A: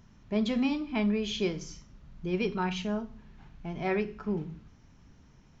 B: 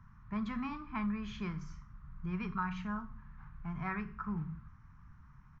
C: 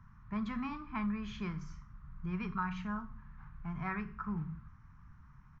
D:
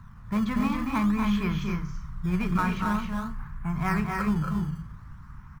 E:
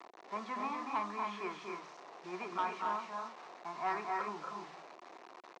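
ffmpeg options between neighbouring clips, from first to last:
-filter_complex "[0:a]firequalizer=gain_entry='entry(140,0);entry(280,-15);entry(510,-25);entry(1100,7);entry(3000,-18);entry(7100,-20)':delay=0.05:min_phase=1,acrossover=split=150|3000[s0][s1][s2];[s1]acompressor=threshold=0.0158:ratio=2.5[s3];[s0][s3][s2]amix=inputs=3:normalize=0,volume=1.19"
-af anull
-filter_complex "[0:a]asplit=2[s0][s1];[s1]acrusher=samples=16:mix=1:aa=0.000001:lfo=1:lforange=25.6:lforate=0.5,volume=0.282[s2];[s0][s2]amix=inputs=2:normalize=0,aecho=1:1:236.2|271.1:0.501|0.562,volume=2.66"
-af "acrusher=bits=6:mix=0:aa=0.000001,highpass=f=350:w=0.5412,highpass=f=350:w=1.3066,equalizer=f=360:t=q:w=4:g=5,equalizer=f=720:t=q:w=4:g=9,equalizer=f=1000:t=q:w=4:g=6,equalizer=f=1500:t=q:w=4:g=-4,equalizer=f=3200:t=q:w=4:g=-6,equalizer=f=4800:t=q:w=4:g=-3,lowpass=f=5600:w=0.5412,lowpass=f=5600:w=1.3066,asoftclip=type=tanh:threshold=0.133,volume=0.422"

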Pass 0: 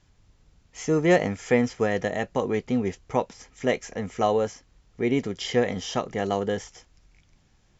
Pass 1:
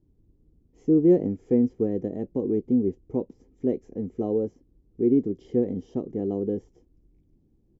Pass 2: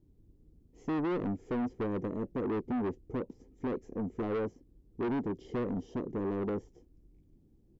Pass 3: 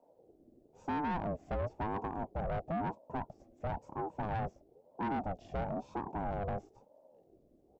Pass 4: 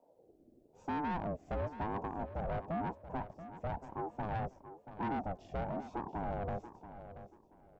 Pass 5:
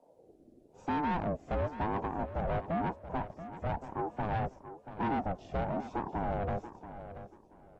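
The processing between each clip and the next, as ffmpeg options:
-af "firequalizer=gain_entry='entry(140,0);entry(320,10);entry(620,-11);entry(1400,-27)':delay=0.05:min_phase=1,volume=0.75"
-af "alimiter=limit=0.168:level=0:latency=1:release=25,asoftclip=type=tanh:threshold=0.0335"
-af "aeval=exprs='val(0)*sin(2*PI*440*n/s+440*0.35/1*sin(2*PI*1*n/s))':c=same"
-af "aecho=1:1:682|1364|2046:0.237|0.0522|0.0115,volume=0.841"
-af "volume=1.68" -ar 32000 -c:a aac -b:a 32k

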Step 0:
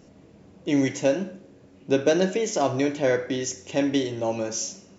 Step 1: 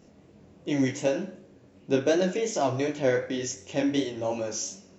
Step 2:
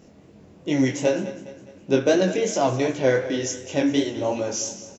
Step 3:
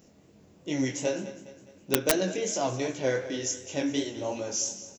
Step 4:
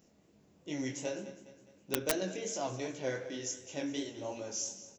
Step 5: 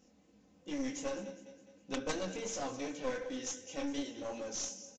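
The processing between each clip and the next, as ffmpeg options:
-af "flanger=delay=19.5:depth=5.3:speed=2.7"
-af "aecho=1:1:206|412|618|824:0.178|0.0854|0.041|0.0197,volume=1.68"
-af "aeval=exprs='(mod(2.51*val(0)+1,2)-1)/2.51':c=same,aemphasis=mode=production:type=50kf,volume=0.398"
-af "bandreject=f=45.11:t=h:w=4,bandreject=f=90.22:t=h:w=4,bandreject=f=135.33:t=h:w=4,bandreject=f=180.44:t=h:w=4,bandreject=f=225.55:t=h:w=4,bandreject=f=270.66:t=h:w=4,bandreject=f=315.77:t=h:w=4,bandreject=f=360.88:t=h:w=4,bandreject=f=405.99:t=h:w=4,bandreject=f=451.1:t=h:w=4,bandreject=f=496.21:t=h:w=4,bandreject=f=541.32:t=h:w=4,bandreject=f=586.43:t=h:w=4,bandreject=f=631.54:t=h:w=4,volume=0.422"
-af "aecho=1:1:3.9:0.68,aresample=16000,aeval=exprs='clip(val(0),-1,0.0126)':c=same,aresample=44100,volume=0.841"

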